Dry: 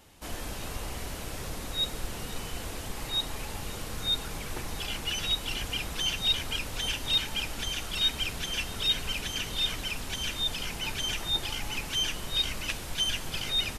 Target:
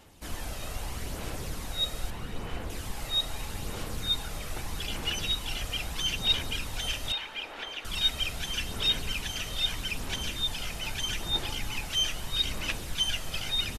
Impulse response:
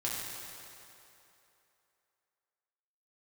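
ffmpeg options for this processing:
-filter_complex "[0:a]asettb=1/sr,asplit=3[link_01][link_02][link_03];[link_01]atrim=end=2.104[link_04];[link_02]atrim=start=2.1:end=2.7,asetpts=PTS-STARTPTS,afade=type=in:duration=0.004:curve=qsin,afade=type=out:start_time=0.596:duration=0.004:curve=qsin,acrossover=split=3100[link_05][link_06];[link_06]acompressor=threshold=-53dB:ratio=4:attack=1:release=60[link_07];[link_05][link_07]amix=inputs=2:normalize=0[link_08];[link_03]atrim=start=2.696[link_09];[link_04][link_08]acrossfade=duration=0.004:curve1=hsin:curve2=qsin[link_10];[link_10][link_09]acrossfade=duration=0.004:curve1=qsin:curve2=hsin,asettb=1/sr,asplit=3[link_11][link_12][link_13];[link_11]atrim=end=7.124[link_14];[link_12]atrim=start=7.12:end=7.85,asetpts=PTS-STARTPTS,afade=type=in:duration=0.004:curve=qsin,afade=type=out:start_time=0.726:duration=0.004:curve=qsin,acrossover=split=350 3500:gain=0.0631 1 0.112[link_15][link_16][link_17];[link_15][link_16][link_17]amix=inputs=3:normalize=0[link_18];[link_13]atrim=start=7.846[link_19];[link_14][link_18]acrossfade=duration=0.004:curve1=hsin:curve2=qsin[link_20];[link_20][link_19]acrossfade=duration=0.004:curve1=qsin:curve2=hsin,aphaser=in_gain=1:out_gain=1:delay=1.6:decay=0.35:speed=0.79:type=sinusoidal,aresample=32000,aresample=44100,asplit=2[link_21][link_22];[1:a]atrim=start_sample=2205,adelay=39[link_23];[link_22][link_23]afir=irnorm=-1:irlink=0,volume=-25dB[link_24];[link_21][link_24]amix=inputs=2:normalize=0,volume=-1.5dB"

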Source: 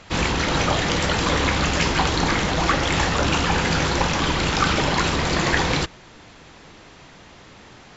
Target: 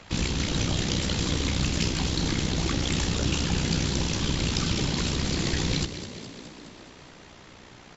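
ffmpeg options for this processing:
ffmpeg -i in.wav -filter_complex "[0:a]acrossover=split=360|3000[link_01][link_02][link_03];[link_02]acompressor=threshold=-49dB:ratio=2[link_04];[link_01][link_04][link_03]amix=inputs=3:normalize=0,tremolo=f=62:d=0.571,asettb=1/sr,asplit=3[link_05][link_06][link_07];[link_05]atrim=end=1.314[link_08];[link_06]atrim=start=1.31:end=2.25,asetpts=PTS-STARTPTS,afade=type=in:duration=0.004:curve=qsin,afade=type=out:start_time=0.936:duration=0.004:curve=qsin,aeval=exprs='0.355*(cos(1*acos(clip(val(0)/0.355,-1,1)))-cos(1*PI/2))+0.00562*(cos(7*acos(clip(val(0)/0.355,-1,1)))-cos(7*PI/2))':channel_layout=same[link_09];[link_07]atrim=start=2.246[link_10];[link_08][link_09]acrossfade=duration=0.004:curve1=hsin:curve2=qsin[link_11];[link_11][link_10]acrossfade=duration=0.004:curve1=qsin:curve2=hsin,asplit=2[link_12][link_13];[link_13]asplit=8[link_14][link_15][link_16][link_17][link_18][link_19][link_20][link_21];[link_14]adelay=209,afreqshift=34,volume=-11.5dB[link_22];[link_15]adelay=418,afreqshift=68,volume=-15.4dB[link_23];[link_16]adelay=627,afreqshift=102,volume=-19.3dB[link_24];[link_17]adelay=836,afreqshift=136,volume=-23.1dB[link_25];[link_18]adelay=1045,afreqshift=170,volume=-27dB[link_26];[link_19]adelay=1254,afreqshift=204,volume=-30.9dB[link_27];[link_20]adelay=1463,afreqshift=238,volume=-34.8dB[link_28];[link_21]adelay=1672,afreqshift=272,volume=-38.6dB[link_29];[link_22][link_23][link_24][link_25][link_26][link_27][link_28][link_29]amix=inputs=8:normalize=0[link_30];[link_12][link_30]amix=inputs=2:normalize=0" out.wav

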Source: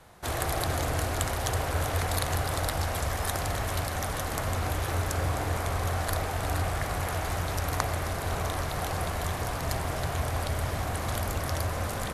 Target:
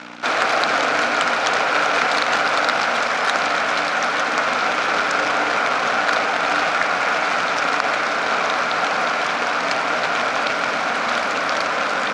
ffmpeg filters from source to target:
ffmpeg -i in.wav -af "aeval=exprs='val(0)+0.0112*(sin(2*PI*60*n/s)+sin(2*PI*2*60*n/s)/2+sin(2*PI*3*60*n/s)/3+sin(2*PI*4*60*n/s)/4+sin(2*PI*5*60*n/s)/5)':channel_layout=same,acrusher=bits=2:mode=log:mix=0:aa=0.000001,highpass=frequency=250:width=0.5412,highpass=frequency=250:width=1.3066,equalizer=frequency=360:width_type=q:width=4:gain=-9,equalizer=frequency=1400:width_type=q:width=4:gain=10,equalizer=frequency=2400:width_type=q:width=4:gain=7,lowpass=frequency=5600:width=0.5412,lowpass=frequency=5600:width=1.3066,alimiter=level_in=12dB:limit=-1dB:release=50:level=0:latency=1,volume=-1dB" out.wav

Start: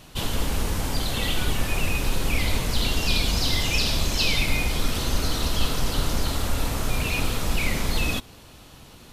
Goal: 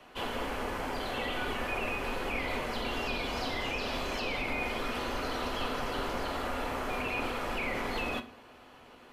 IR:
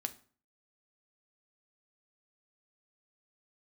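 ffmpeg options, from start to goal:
-filter_complex "[0:a]acrossover=split=310 2800:gain=0.141 1 0.126[link_01][link_02][link_03];[link_01][link_02][link_03]amix=inputs=3:normalize=0,bandreject=frequency=3700:width=16,acrossover=split=250|1300[link_04][link_05][link_06];[link_06]alimiter=level_in=5dB:limit=-24dB:level=0:latency=1:release=65,volume=-5dB[link_07];[link_04][link_05][link_07]amix=inputs=3:normalize=0[link_08];[1:a]atrim=start_sample=2205[link_09];[link_08][link_09]afir=irnorm=-1:irlink=0"

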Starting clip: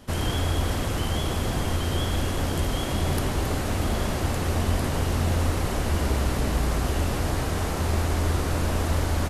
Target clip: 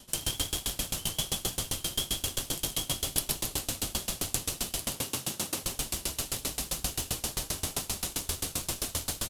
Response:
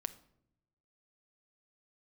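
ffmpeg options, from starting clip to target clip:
-filter_complex "[0:a]asettb=1/sr,asplit=3[link_01][link_02][link_03];[link_01]atrim=end=4.844[link_04];[link_02]atrim=start=4.84:end=5.63,asetpts=PTS-STARTPTS,afade=type=in:duration=0.004:curve=qsin,afade=type=out:start_time=0.786:duration=0.004:curve=qsin,highpass=frequency=110:width=0.5412,highpass=frequency=110:width=1.3066[link_05];[link_03]atrim=start=5.626[link_06];[link_04][link_05]acrossfade=duration=0.004:curve1=hsin:curve2=qsin[link_07];[link_07][link_06]acrossfade=duration=0.004:curve1=qsin:curve2=hsin,acrossover=split=2300[link_08][link_09];[link_08]alimiter=limit=-22dB:level=0:latency=1[link_10];[link_10][link_09]amix=inputs=2:normalize=0,aexciter=amount=3.9:drive=4.8:freq=2700,asplit=2[link_11][link_12];[link_12]acrusher=bits=2:mix=0:aa=0.5,volume=-5dB[link_13];[link_11][link_13]amix=inputs=2:normalize=0,flanger=delay=4.9:depth=3.1:regen=-43:speed=1.5:shape=triangular,aecho=1:1:126:0.562,aeval=exprs='val(0)*pow(10,-25*if(lt(mod(7.6*n/s,1),2*abs(7.6)/1000),1-mod(7.6*n/s,1)/(2*abs(7.6)/1000),(mod(7.6*n/s,1)-2*abs(7.6)/1000)/(1-2*abs(7.6)/1000))/20)':channel_layout=same"

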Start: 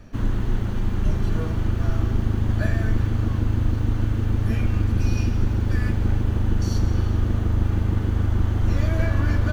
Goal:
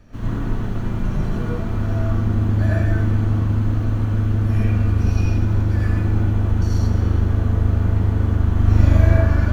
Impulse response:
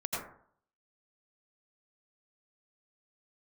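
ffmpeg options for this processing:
-filter_complex "[0:a]asettb=1/sr,asplit=3[link_01][link_02][link_03];[link_01]atrim=end=8.534[link_04];[link_02]atrim=start=8.53:end=9.17,asetpts=PTS-STARTPTS,afade=type=in:duration=0.004:curve=qsin,afade=type=out:start_time=0.636:duration=0.004:curve=qsin,asplit=2[link_05][link_06];[link_06]adelay=40,volume=-2.5dB[link_07];[link_05][link_07]amix=inputs=2:normalize=0,atrim=end_sample=28224[link_08];[link_03]atrim=start=9.166[link_09];[link_04][link_08]acrossfade=duration=0.004:curve1=hsin:curve2=qsin[link_10];[link_10][link_09]acrossfade=duration=0.004:curve1=qsin:curve2=hsin[link_11];[1:a]atrim=start_sample=2205[link_12];[link_11][link_12]afir=irnorm=-1:irlink=0,volume=-2.5dB"

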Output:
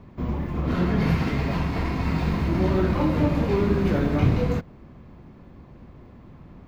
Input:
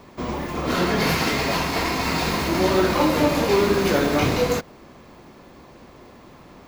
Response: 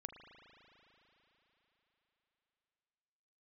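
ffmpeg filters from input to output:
-af "bass=frequency=250:gain=15,treble=frequency=4000:gain=-13,volume=-8dB"

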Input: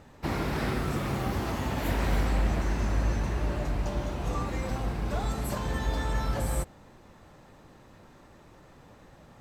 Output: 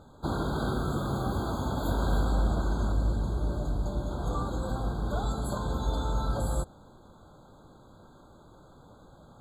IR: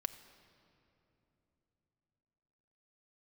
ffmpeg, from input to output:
-filter_complex "[0:a]asettb=1/sr,asplit=3[link_01][link_02][link_03];[link_01]atrim=end=2.924[link_04];[link_02]atrim=start=2.92:end=4.11,asetpts=PTS-STARTPTS,afade=type=in:duration=0.004:curve=qsin,afade=type=out:start_time=1.186:duration=0.004:curve=qsin,equalizer=frequency=1500:width=0.47:gain=-5.5[link_05];[link_03]atrim=start=4.106[link_06];[link_04][link_05]acrossfade=duration=0.004:curve1=hsin:curve2=qsin[link_07];[link_07][link_06]acrossfade=duration=0.004:curve1=qsin:curve2=hsin,afftfilt=real='re*eq(mod(floor(b*sr/1024/1600),2),0)':imag='im*eq(mod(floor(b*sr/1024/1600),2),0)':win_size=1024:overlap=0.75"

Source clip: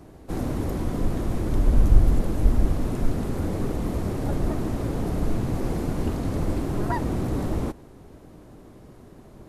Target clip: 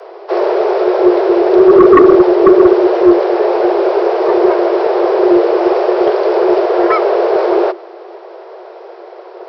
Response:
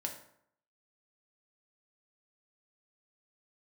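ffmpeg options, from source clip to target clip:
-af "aresample=11025,aresample=44100,afreqshift=340,aeval=exprs='0.891*sin(PI/2*3.16*val(0)/0.891)':channel_layout=same"

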